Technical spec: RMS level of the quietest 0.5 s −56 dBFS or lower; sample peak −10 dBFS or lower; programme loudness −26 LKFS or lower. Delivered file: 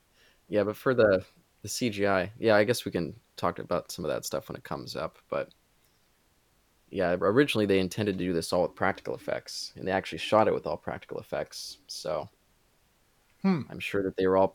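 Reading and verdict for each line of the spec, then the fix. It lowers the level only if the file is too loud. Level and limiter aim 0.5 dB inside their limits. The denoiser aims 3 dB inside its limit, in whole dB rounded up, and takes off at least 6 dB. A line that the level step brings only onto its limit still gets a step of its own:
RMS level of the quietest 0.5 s −67 dBFS: in spec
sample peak −8.0 dBFS: out of spec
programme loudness −29.0 LKFS: in spec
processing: brickwall limiter −10.5 dBFS

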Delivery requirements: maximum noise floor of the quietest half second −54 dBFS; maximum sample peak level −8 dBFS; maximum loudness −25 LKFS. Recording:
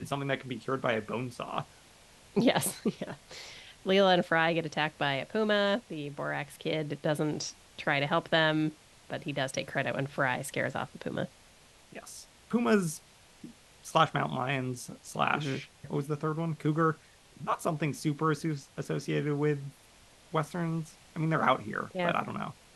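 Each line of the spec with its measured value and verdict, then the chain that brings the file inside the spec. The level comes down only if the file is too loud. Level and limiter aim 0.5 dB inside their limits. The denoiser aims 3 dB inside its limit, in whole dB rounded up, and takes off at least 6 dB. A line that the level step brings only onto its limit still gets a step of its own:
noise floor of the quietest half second −58 dBFS: in spec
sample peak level −9.0 dBFS: in spec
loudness −31.0 LKFS: in spec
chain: no processing needed

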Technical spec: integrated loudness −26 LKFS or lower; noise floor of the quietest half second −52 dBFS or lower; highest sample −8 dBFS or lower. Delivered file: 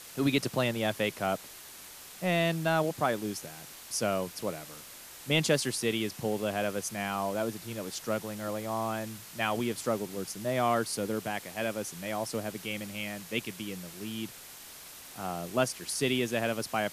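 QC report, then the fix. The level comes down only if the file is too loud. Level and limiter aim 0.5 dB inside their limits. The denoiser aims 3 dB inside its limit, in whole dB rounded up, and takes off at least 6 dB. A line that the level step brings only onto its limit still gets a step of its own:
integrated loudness −32.0 LKFS: in spec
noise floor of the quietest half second −48 dBFS: out of spec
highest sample −12.0 dBFS: in spec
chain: broadband denoise 7 dB, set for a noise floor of −48 dBFS

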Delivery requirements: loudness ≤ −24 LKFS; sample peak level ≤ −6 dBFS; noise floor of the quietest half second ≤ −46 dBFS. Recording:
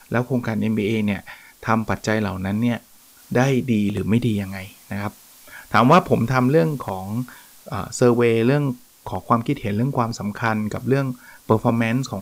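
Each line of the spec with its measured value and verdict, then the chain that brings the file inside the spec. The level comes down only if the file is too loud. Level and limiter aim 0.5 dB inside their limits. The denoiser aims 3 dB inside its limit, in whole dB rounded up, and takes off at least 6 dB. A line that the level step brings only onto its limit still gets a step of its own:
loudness −21.0 LKFS: out of spec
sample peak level −4.5 dBFS: out of spec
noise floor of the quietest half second −50 dBFS: in spec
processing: level −3.5 dB

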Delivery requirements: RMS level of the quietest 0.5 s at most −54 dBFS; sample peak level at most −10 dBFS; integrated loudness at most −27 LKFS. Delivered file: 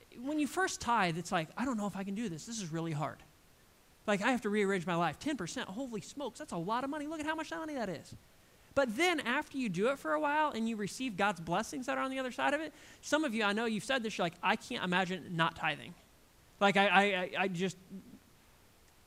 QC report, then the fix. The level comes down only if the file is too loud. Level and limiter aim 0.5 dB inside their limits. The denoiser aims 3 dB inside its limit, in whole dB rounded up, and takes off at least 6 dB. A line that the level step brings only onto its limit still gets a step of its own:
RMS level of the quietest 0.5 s −64 dBFS: in spec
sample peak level −11.5 dBFS: in spec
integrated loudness −34.0 LKFS: in spec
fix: no processing needed

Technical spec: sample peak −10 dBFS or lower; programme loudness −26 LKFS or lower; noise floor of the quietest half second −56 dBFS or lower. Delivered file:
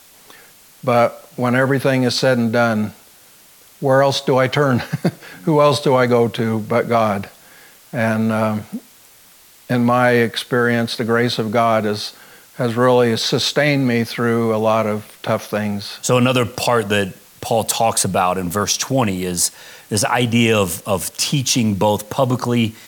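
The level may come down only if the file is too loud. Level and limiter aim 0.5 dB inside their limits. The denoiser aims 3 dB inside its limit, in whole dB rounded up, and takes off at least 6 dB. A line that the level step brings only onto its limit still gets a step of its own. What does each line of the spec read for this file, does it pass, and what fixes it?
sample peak −4.5 dBFS: out of spec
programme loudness −17.5 LKFS: out of spec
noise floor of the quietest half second −47 dBFS: out of spec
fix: broadband denoise 6 dB, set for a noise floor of −47 dBFS
level −9 dB

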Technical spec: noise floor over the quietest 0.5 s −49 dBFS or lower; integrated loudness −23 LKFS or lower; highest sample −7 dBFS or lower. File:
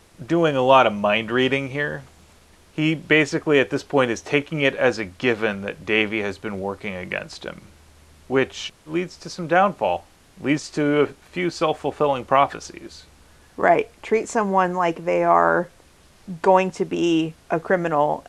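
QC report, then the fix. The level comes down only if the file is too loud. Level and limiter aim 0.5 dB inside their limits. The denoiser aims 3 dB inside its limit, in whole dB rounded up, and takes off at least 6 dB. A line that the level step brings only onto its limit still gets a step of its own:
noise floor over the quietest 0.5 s −52 dBFS: in spec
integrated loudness −21.0 LKFS: out of spec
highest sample −2.5 dBFS: out of spec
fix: level −2.5 dB
brickwall limiter −7.5 dBFS

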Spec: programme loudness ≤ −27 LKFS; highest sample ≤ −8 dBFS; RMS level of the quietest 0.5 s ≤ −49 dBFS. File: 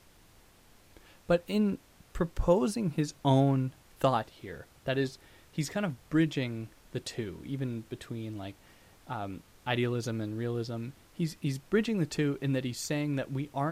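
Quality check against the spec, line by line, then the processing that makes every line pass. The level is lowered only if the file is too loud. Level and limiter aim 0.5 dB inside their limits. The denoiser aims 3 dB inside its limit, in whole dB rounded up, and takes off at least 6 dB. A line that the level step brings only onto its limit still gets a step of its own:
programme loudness −32.0 LKFS: in spec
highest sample −13.0 dBFS: in spec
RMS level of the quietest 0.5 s −59 dBFS: in spec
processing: no processing needed

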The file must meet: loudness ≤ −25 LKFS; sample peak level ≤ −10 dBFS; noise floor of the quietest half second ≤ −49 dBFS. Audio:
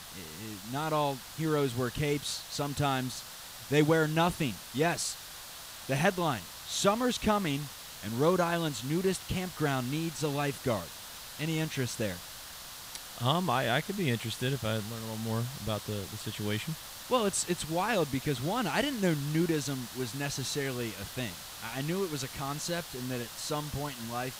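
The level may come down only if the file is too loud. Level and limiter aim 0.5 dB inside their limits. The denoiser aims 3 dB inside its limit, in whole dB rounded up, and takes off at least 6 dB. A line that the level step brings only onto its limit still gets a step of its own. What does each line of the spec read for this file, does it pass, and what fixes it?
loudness −32.0 LKFS: in spec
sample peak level −11.5 dBFS: in spec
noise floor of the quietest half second −46 dBFS: out of spec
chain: broadband denoise 6 dB, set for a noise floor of −46 dBFS

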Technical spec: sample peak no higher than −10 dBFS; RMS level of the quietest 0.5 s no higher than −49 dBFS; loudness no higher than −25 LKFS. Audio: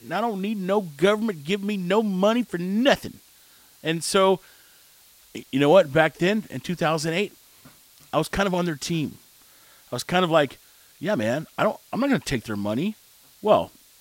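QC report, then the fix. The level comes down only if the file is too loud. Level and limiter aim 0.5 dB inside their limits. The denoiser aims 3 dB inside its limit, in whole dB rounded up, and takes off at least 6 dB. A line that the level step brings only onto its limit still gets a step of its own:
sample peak −4.5 dBFS: out of spec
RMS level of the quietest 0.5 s −54 dBFS: in spec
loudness −23.5 LKFS: out of spec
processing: level −2 dB
brickwall limiter −10.5 dBFS

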